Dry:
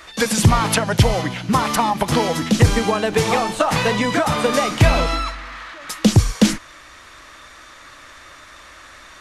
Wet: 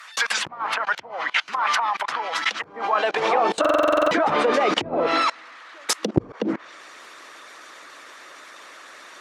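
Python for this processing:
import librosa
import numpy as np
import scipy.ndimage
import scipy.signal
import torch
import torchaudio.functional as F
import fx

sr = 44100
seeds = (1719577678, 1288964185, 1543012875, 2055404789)

y = fx.highpass(x, sr, hz=150.0, slope=6, at=(5.12, 6.16), fade=0.02)
y = fx.hpss(y, sr, part='percussive', gain_db=9)
y = fx.env_lowpass_down(y, sr, base_hz=380.0, full_db=-3.5)
y = fx.level_steps(y, sr, step_db=24)
y = fx.filter_sweep_highpass(y, sr, from_hz=1200.0, to_hz=360.0, start_s=2.56, end_s=3.59, q=1.3)
y = fx.buffer_glitch(y, sr, at_s=(3.6,), block=2048, repeats=10)
y = y * librosa.db_to_amplitude(4.0)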